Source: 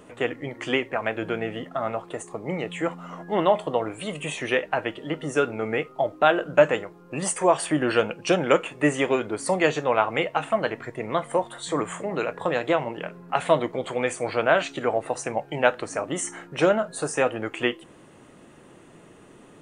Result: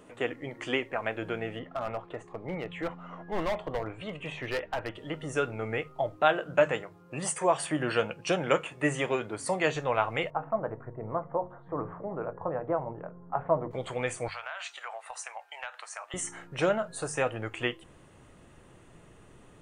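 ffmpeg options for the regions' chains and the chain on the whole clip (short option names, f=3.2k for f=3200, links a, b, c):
-filter_complex "[0:a]asettb=1/sr,asplit=3[a][b][c];[a]atrim=end=1.594[d];[b]atrim=start=1.59:end=4.95,asetpts=PTS-STARTPTS,afade=t=in:d=0.004:c=qsin,afade=t=out:st=3.356:d=0.004:c=qsin,lowpass=3k,asoftclip=type=hard:threshold=-20.5dB[e];[c]atrim=start=4.946[f];[d][e]acrossfade=d=0.004:c1=hsin:c2=qsin[g];[g][f]acrossfade=d=0.004:c1=qsin:c2=hsin,asettb=1/sr,asplit=3[h][i][j];[h]atrim=end=6.174[k];[i]atrim=start=6.17:end=9.75,asetpts=PTS-STARTPTS,afade=t=in:d=0.004:c=qsin,afade=t=out:st=3.576:d=0.004:c=qsin,highpass=100,asplit=2[l][m];[m]adelay=13,volume=-13.5dB[n];[l][n]amix=inputs=2:normalize=0,atrim=end_sample=157878[o];[j]atrim=start=9.746[p];[k][o]acrossfade=d=0.004:c1=hsin:c2=qsin[q];[q][p]acrossfade=d=0.004:c1=qsin:c2=hsin,asettb=1/sr,asplit=3[r][s][t];[r]atrim=end=10.304[u];[s]atrim=start=10.3:end=13.71,asetpts=PTS-STARTPTS,afade=t=in:d=0.004:c=qsin,afade=t=out:st=3.406:d=0.004:c=qsin,lowpass=f=1.2k:w=0.5412,lowpass=f=1.2k:w=1.3066,bandreject=f=60:t=h:w=6,bandreject=f=120:t=h:w=6,bandreject=f=180:t=h:w=6,bandreject=f=240:t=h:w=6,bandreject=f=300:t=h:w=6,bandreject=f=360:t=h:w=6,bandreject=f=420:t=h:w=6,bandreject=f=480:t=h:w=6,bandreject=f=540:t=h:w=6[v];[t]atrim=start=13.706[w];[u][v]acrossfade=d=0.004:c1=hsin:c2=qsin[x];[x][w]acrossfade=d=0.004:c1=qsin:c2=hsin,asettb=1/sr,asplit=3[y][z][aa];[y]atrim=end=14.284[ab];[z]atrim=start=14.28:end=16.14,asetpts=PTS-STARTPTS,afade=t=in:d=0.004:c=qsin,afade=t=out:st=1.856:d=0.004:c=qsin,highpass=f=830:w=0.5412,highpass=f=830:w=1.3066,acompressor=threshold=-28dB:ratio=10:attack=3.2:release=140:knee=1:detection=peak[ac];[aa]atrim=start=16.136[ad];[ab][ac]acrossfade=d=0.004:c1=hsin:c2=qsin[ae];[ae][ad]acrossfade=d=0.004:c1=qsin:c2=hsin,asubboost=boost=5.5:cutoff=100,bandreject=f=50:t=h:w=6,bandreject=f=100:t=h:w=6,bandreject=f=150:t=h:w=6,volume=-5dB"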